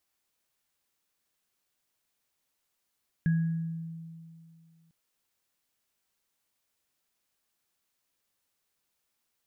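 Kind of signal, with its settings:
inharmonic partials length 1.65 s, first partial 164 Hz, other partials 1,660 Hz, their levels −16.5 dB, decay 2.39 s, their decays 0.74 s, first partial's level −21 dB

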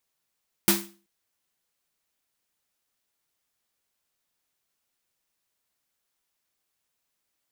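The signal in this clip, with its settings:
synth snare length 0.38 s, tones 200 Hz, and 340 Hz, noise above 610 Hz, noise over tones 4 dB, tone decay 0.39 s, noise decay 0.33 s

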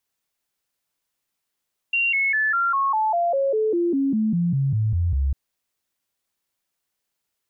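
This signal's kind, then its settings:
stepped sweep 2,760 Hz down, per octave 3, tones 17, 0.20 s, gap 0.00 s −18 dBFS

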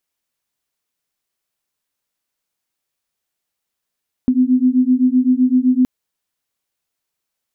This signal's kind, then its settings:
two tones that beat 250 Hz, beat 7.8 Hz, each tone −14 dBFS 1.57 s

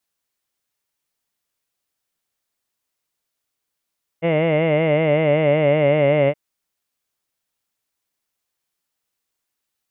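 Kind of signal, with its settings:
vowel from formants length 2.12 s, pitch 161 Hz, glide −2 semitones, F1 570 Hz, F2 2,100 Hz, F3 2,800 Hz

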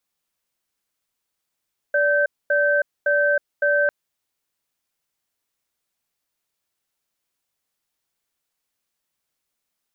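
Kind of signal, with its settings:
tone pair in a cadence 581 Hz, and 1,550 Hz, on 0.32 s, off 0.24 s, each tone −18.5 dBFS 1.95 s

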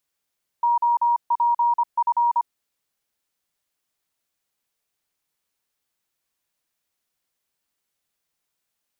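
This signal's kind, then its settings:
Morse code "OPF" 25 words per minute 949 Hz −16 dBFS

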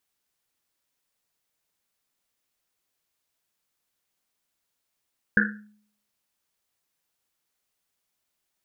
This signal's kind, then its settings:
drum after Risset, pitch 210 Hz, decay 0.60 s, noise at 1,600 Hz, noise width 330 Hz, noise 60%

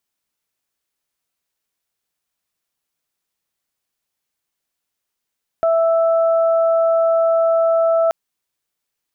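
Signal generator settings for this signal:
steady harmonic partials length 2.48 s, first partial 660 Hz, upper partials −12 dB, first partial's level −12.5 dB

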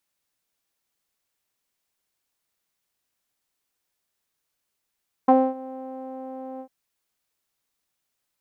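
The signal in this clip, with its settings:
subtractive voice saw C4 12 dB per octave, low-pass 680 Hz, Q 5.2, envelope 0.5 octaves, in 0.05 s, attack 7.8 ms, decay 0.25 s, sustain −21.5 dB, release 0.08 s, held 1.32 s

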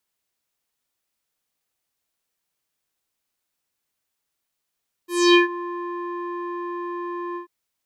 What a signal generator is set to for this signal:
subtractive voice square F4 12 dB per octave, low-pass 1,300 Hz, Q 3.8, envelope 3.5 octaves, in 0.41 s, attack 266 ms, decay 0.13 s, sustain −18.5 dB, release 0.11 s, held 2.28 s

